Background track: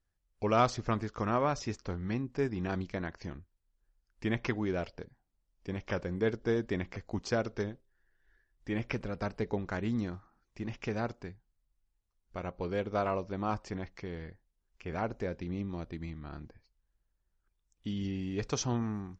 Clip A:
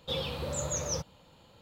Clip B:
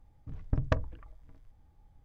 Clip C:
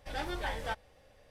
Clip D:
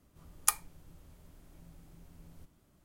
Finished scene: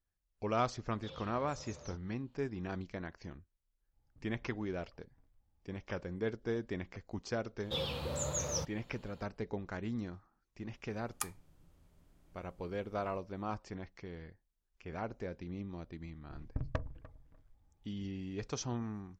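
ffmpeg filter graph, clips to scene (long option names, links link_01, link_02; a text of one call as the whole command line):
ffmpeg -i bed.wav -i cue0.wav -i cue1.wav -i cue2.wav -i cue3.wav -filter_complex "[1:a]asplit=2[link_01][link_02];[2:a]asplit=2[link_03][link_04];[0:a]volume=-6dB[link_05];[link_01]lowpass=frequency=5800:width=0.5412,lowpass=frequency=5800:width=1.3066[link_06];[link_03]acompressor=threshold=-43dB:ratio=6:attack=3.2:release=140:knee=1:detection=peak[link_07];[4:a]highshelf=frequency=9800:gain=-7.5[link_08];[link_04]asplit=2[link_09][link_10];[link_10]adelay=297,lowpass=frequency=2000:poles=1,volume=-18dB,asplit=2[link_11][link_12];[link_12]adelay=297,lowpass=frequency=2000:poles=1,volume=0.22[link_13];[link_09][link_11][link_13]amix=inputs=3:normalize=0[link_14];[link_06]atrim=end=1.61,asetpts=PTS-STARTPTS,volume=-17.5dB,afade=type=in:duration=0.004:curve=hsin,afade=type=out:start_time=1.606:duration=0.004:curve=hsin,adelay=950[link_15];[link_07]atrim=end=2.04,asetpts=PTS-STARTPTS,volume=-14.5dB,afade=type=in:duration=0.1,afade=type=out:start_time=1.94:duration=0.1,adelay=171549S[link_16];[link_02]atrim=end=1.61,asetpts=PTS-STARTPTS,volume=-3dB,afade=type=in:duration=0.004:curve=hsin,afade=type=out:start_time=1.606:duration=0.004:curve=hsin,adelay=7630[link_17];[link_08]atrim=end=2.84,asetpts=PTS-STARTPTS,volume=-8.5dB,afade=type=in:duration=0.004:curve=hsin,afade=type=out:start_time=2.836:duration=0.004:curve=hsin,adelay=10730[link_18];[link_14]atrim=end=2.04,asetpts=PTS-STARTPTS,volume=-8.5dB,afade=type=in:duration=0.004:curve=hsin,afade=type=out:start_time=2.036:duration=0.004:curve=hsin,adelay=16030[link_19];[link_05][link_15][link_16][link_17][link_18][link_19]amix=inputs=6:normalize=0" out.wav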